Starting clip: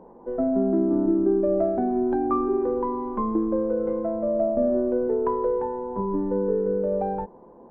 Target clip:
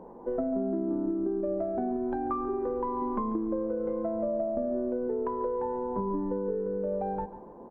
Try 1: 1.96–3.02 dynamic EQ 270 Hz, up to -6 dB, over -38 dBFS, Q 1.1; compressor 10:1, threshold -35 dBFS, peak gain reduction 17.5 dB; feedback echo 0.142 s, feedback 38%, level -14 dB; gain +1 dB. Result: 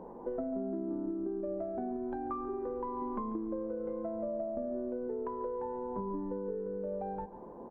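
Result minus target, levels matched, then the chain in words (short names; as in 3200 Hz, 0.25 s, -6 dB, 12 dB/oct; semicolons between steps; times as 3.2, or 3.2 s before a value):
compressor: peak gain reduction +6.5 dB
1.96–3.02 dynamic EQ 270 Hz, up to -6 dB, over -38 dBFS, Q 1.1; compressor 10:1, threshold -28 dBFS, peak gain reduction 11.5 dB; feedback echo 0.142 s, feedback 38%, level -14 dB; gain +1 dB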